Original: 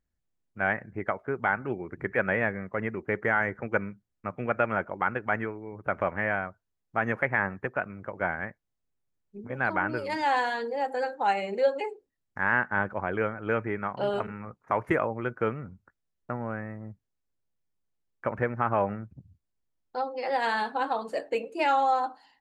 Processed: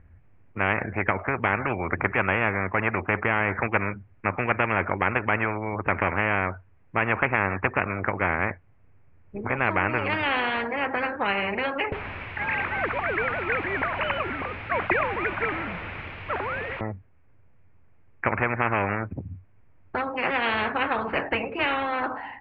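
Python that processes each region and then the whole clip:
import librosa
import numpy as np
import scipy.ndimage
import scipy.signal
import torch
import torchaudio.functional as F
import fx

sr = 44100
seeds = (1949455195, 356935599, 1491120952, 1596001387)

y = fx.chain(x, sr, fx.sine_speech(),
    fx.quant_dither(seeds[0], bits=8, dither='triangular'),
    fx.band_widen(depth_pct=40), at=(11.92, 16.81))
y = scipy.signal.sosfilt(scipy.signal.ellip(4, 1.0, 70, 2400.0, 'lowpass', fs=sr, output='sos'), y)
y = fx.peak_eq(y, sr, hz=92.0, db=15.0, octaves=0.65)
y = fx.spectral_comp(y, sr, ratio=4.0)
y = F.gain(torch.from_numpy(y), 4.5).numpy()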